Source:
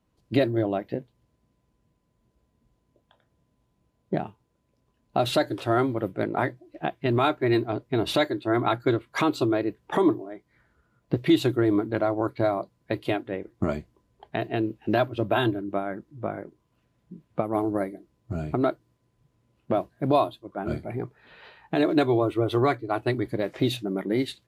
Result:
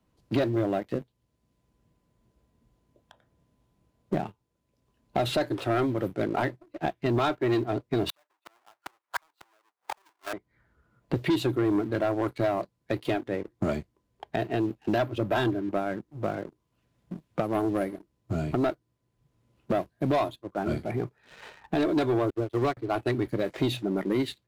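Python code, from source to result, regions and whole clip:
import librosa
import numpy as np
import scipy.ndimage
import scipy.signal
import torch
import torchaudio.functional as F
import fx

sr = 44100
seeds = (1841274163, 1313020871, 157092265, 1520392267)

y = fx.chain(x, sr, fx.halfwave_hold(),
    fx.highpass_res(hz=860.0, q=1.6),
    fx.gate_flip(shuts_db=-18.0, range_db=-39), at=(8.09, 10.33))
y = fx.chain(y, sr, fx.backlash(play_db=-31.0),
    fx.upward_expand(threshold_db=-34.0, expansion=2.5), at=(22.3, 22.77))
y = fx.leveller(y, sr, passes=2)
y = fx.band_squash(y, sr, depth_pct=40)
y = y * 10.0 ** (-7.0 / 20.0)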